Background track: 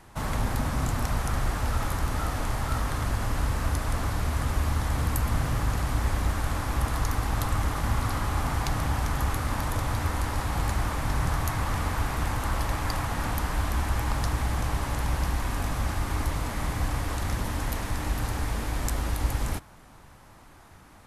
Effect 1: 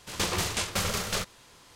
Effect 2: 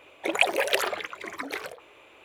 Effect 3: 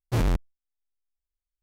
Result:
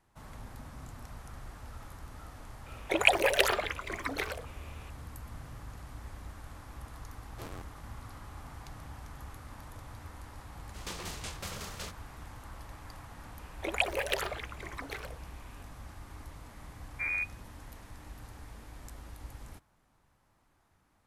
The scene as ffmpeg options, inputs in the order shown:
ffmpeg -i bed.wav -i cue0.wav -i cue1.wav -i cue2.wav -filter_complex "[2:a]asplit=2[link_01][link_02];[3:a]asplit=2[link_03][link_04];[0:a]volume=-19dB[link_05];[link_03]highpass=270[link_06];[link_04]lowpass=frequency=2100:width_type=q:width=0.5098,lowpass=frequency=2100:width_type=q:width=0.6013,lowpass=frequency=2100:width_type=q:width=0.9,lowpass=frequency=2100:width_type=q:width=2.563,afreqshift=-2500[link_07];[link_01]atrim=end=2.24,asetpts=PTS-STARTPTS,volume=-1dB,afade=type=in:duration=0.004:curve=hsin,afade=type=out:start_time=2.236:duration=0.004:curve=hsin,adelay=2660[link_08];[link_06]atrim=end=1.62,asetpts=PTS-STARTPTS,volume=-15.5dB,afade=type=in:duration=0.004:curve=hsin,afade=type=out:start_time=1.616:duration=0.004:curve=hsin,adelay=7260[link_09];[1:a]atrim=end=1.75,asetpts=PTS-STARTPTS,volume=-12.5dB,afade=type=in:duration=0.004:curve=hsin,afade=type=out:start_time=1.746:duration=0.004:curve=hsin,adelay=10670[link_10];[link_02]atrim=end=2.24,asetpts=PTS-STARTPTS,volume=-7.5dB,afade=type=in:duration=0.004:curve=hsin,afade=type=out:start_time=2.236:duration=0.004:curve=hsin,adelay=13390[link_11];[link_07]atrim=end=1.62,asetpts=PTS-STARTPTS,volume=-11dB,afade=type=in:duration=0.004:curve=hsin,afade=type=out:start_time=1.616:duration=0.004:curve=hsin,adelay=16870[link_12];[link_05][link_08][link_09][link_10][link_11][link_12]amix=inputs=6:normalize=0" out.wav

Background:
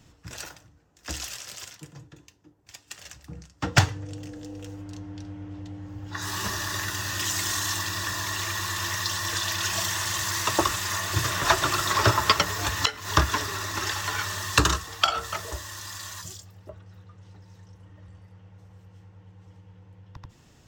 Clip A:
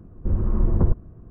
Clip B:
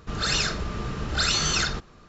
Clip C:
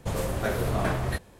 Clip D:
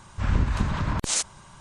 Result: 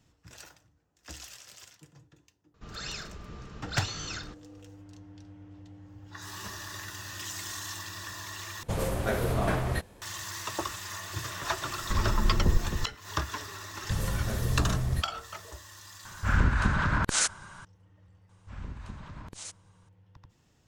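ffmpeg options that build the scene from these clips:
ffmpeg -i bed.wav -i cue0.wav -i cue1.wav -i cue2.wav -i cue3.wav -filter_complex "[3:a]asplit=2[link_01][link_02];[4:a]asplit=2[link_03][link_04];[0:a]volume=-10.5dB[link_05];[1:a]aecho=1:1:266:0.447[link_06];[link_02]bass=frequency=250:gain=14,treble=frequency=4000:gain=10[link_07];[link_03]equalizer=frequency=1500:width_type=o:width=0.53:gain=12[link_08];[link_05]asplit=2[link_09][link_10];[link_09]atrim=end=8.634[link_11];[link_01]atrim=end=1.39,asetpts=PTS-STARTPTS,volume=-1dB[link_12];[link_10]atrim=start=10.016[link_13];[2:a]atrim=end=2.08,asetpts=PTS-STARTPTS,volume=-14dB,afade=type=in:duration=0.004:curve=hsin,afade=type=out:start_time=2.076:duration=0.004:curve=hsin,adelay=2540[link_14];[link_06]atrim=end=1.3,asetpts=PTS-STARTPTS,volume=-6.5dB,afade=type=in:duration=0.004:curve=hsin,afade=type=out:start_time=1.296:duration=0.004:curve=hsin,adelay=11650[link_15];[link_07]atrim=end=1.39,asetpts=PTS-STARTPTS,volume=-12dB,afade=type=in:duration=0.004:curve=hsin,afade=type=out:start_time=1.386:duration=0.004:curve=hsin,adelay=13840[link_16];[link_08]atrim=end=1.6,asetpts=PTS-STARTPTS,volume=-1.5dB,afade=type=in:duration=0.004:curve=hsin,afade=type=out:start_time=1.596:duration=0.004:curve=hsin,adelay=16050[link_17];[link_04]atrim=end=1.6,asetpts=PTS-STARTPTS,volume=-17.5dB,afade=type=in:duration=0.004:curve=hsin,afade=type=out:start_time=1.596:duration=0.004:curve=hsin,adelay=18290[link_18];[link_11][link_12]acrossfade=duration=0.004:curve1=hsin:curve2=hsin[link_19];[link_19][link_13]acrossfade=duration=0.004:curve1=hsin:curve2=hsin[link_20];[link_20][link_14][link_15][link_16][link_17][link_18]amix=inputs=6:normalize=0" out.wav

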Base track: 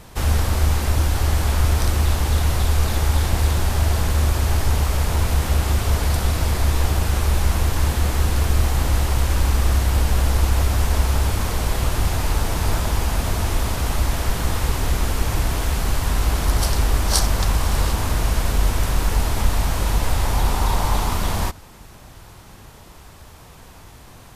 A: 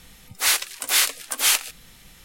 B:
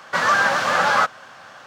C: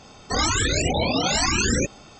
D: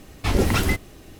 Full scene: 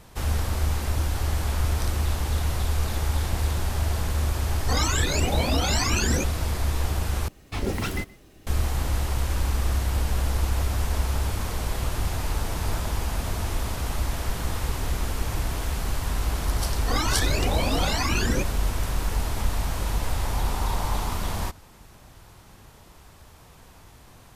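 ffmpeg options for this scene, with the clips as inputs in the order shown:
ffmpeg -i bed.wav -i cue0.wav -i cue1.wav -i cue2.wav -i cue3.wav -filter_complex "[3:a]asplit=2[link_01][link_02];[0:a]volume=-6.5dB[link_03];[4:a]aecho=1:1:124:0.0794[link_04];[link_02]lowpass=4900[link_05];[link_03]asplit=2[link_06][link_07];[link_06]atrim=end=7.284[link_08];[link_04]atrim=end=1.19,asetpts=PTS-STARTPTS,volume=-7.5dB[link_09];[link_07]atrim=start=8.466[link_10];[link_01]atrim=end=2.19,asetpts=PTS-STARTPTS,volume=-4dB,afade=type=in:duration=0.004:curve=hsin,afade=type=out:start_time=2.186:duration=0.004:curve=hsin,adelay=4380[link_11];[link_05]atrim=end=2.19,asetpts=PTS-STARTPTS,volume=-4dB,afade=type=in:duration=0.004:curve=hsin,afade=type=out:start_time=2.186:duration=0.004:curve=hsin,adelay=16570[link_12];[link_08][link_09]acrossfade=duration=0.004:curve1=hsin:curve2=hsin[link_13];[link_13][link_10]acrossfade=duration=0.004:curve1=hsin:curve2=hsin[link_14];[link_14][link_11][link_12]amix=inputs=3:normalize=0" out.wav

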